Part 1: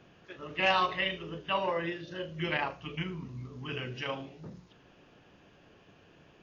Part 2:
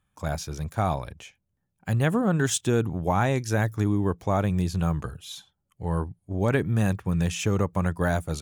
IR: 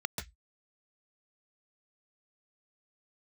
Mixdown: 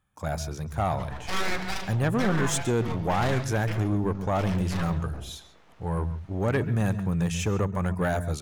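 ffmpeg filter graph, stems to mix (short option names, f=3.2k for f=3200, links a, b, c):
-filter_complex "[0:a]equalizer=f=630:t=o:w=1.9:g=4,aeval=exprs='abs(val(0))':c=same,adelay=700,volume=2dB,asplit=2[a][b];[b]volume=-12.5dB[c];[1:a]volume=0dB,asplit=2[d][e];[e]volume=-15dB[f];[2:a]atrim=start_sample=2205[g];[c][f]amix=inputs=2:normalize=0[h];[h][g]afir=irnorm=-1:irlink=0[i];[a][d][i]amix=inputs=3:normalize=0,asoftclip=type=tanh:threshold=-17.5dB"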